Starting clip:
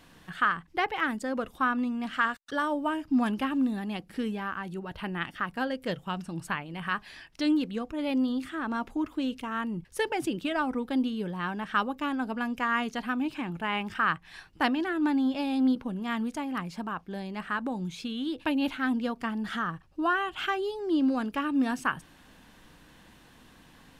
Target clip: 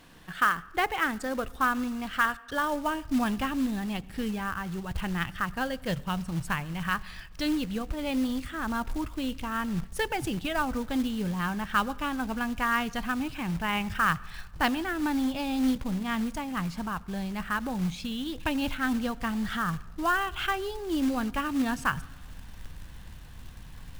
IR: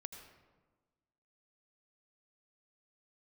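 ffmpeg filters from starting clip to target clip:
-filter_complex "[0:a]asubboost=boost=9.5:cutoff=97,acrusher=bits=4:mode=log:mix=0:aa=0.000001,asplit=2[s0][s1];[1:a]atrim=start_sample=2205[s2];[s1][s2]afir=irnorm=-1:irlink=0,volume=0.316[s3];[s0][s3]amix=inputs=2:normalize=0"

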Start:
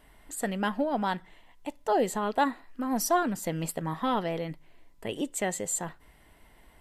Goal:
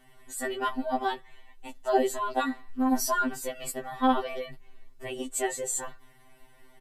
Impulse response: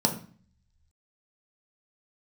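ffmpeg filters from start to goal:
-af "aecho=1:1:5.1:0.54,afftfilt=real='re*2.45*eq(mod(b,6),0)':imag='im*2.45*eq(mod(b,6),0)':win_size=2048:overlap=0.75,volume=1.26"

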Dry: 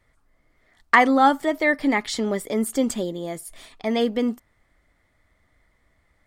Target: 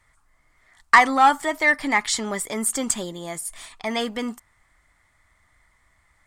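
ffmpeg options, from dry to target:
-af "acontrast=74,equalizer=f=250:t=o:w=1:g=-5,equalizer=f=500:t=o:w=1:g=-7,equalizer=f=1000:t=o:w=1:g=7,equalizer=f=2000:t=o:w=1:g=3,equalizer=f=8000:t=o:w=1:g=10,volume=0.473"

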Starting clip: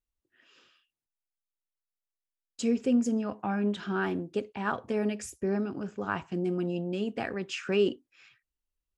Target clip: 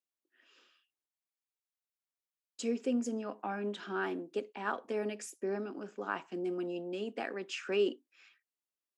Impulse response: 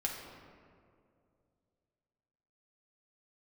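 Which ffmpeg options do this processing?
-af "highpass=f=250:w=0.5412,highpass=f=250:w=1.3066,volume=0.631"

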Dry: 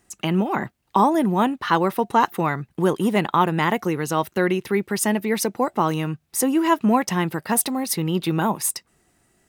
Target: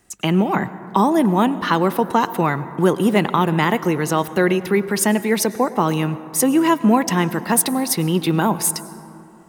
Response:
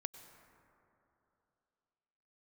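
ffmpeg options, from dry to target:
-filter_complex "[0:a]acrossover=split=420|3000[s0][s1][s2];[s1]acompressor=threshold=0.112:ratio=6[s3];[s0][s3][s2]amix=inputs=3:normalize=0,asplit=2[s4][s5];[1:a]atrim=start_sample=2205[s6];[s5][s6]afir=irnorm=-1:irlink=0,volume=1.58[s7];[s4][s7]amix=inputs=2:normalize=0,volume=0.75"

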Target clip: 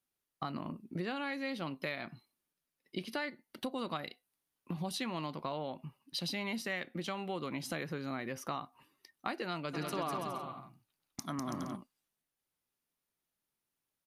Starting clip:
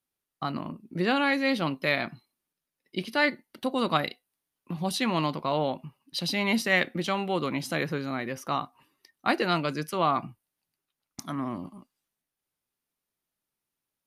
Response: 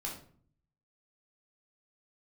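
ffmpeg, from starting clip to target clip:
-filter_complex "[0:a]acompressor=threshold=0.0224:ratio=6,asplit=3[s0][s1][s2];[s0]afade=t=out:st=9.73:d=0.02[s3];[s1]aecho=1:1:200|330|414.5|469.4|505.1:0.631|0.398|0.251|0.158|0.1,afade=t=in:st=9.73:d=0.02,afade=t=out:st=11.75:d=0.02[s4];[s2]afade=t=in:st=11.75:d=0.02[s5];[s3][s4][s5]amix=inputs=3:normalize=0,volume=0.794"

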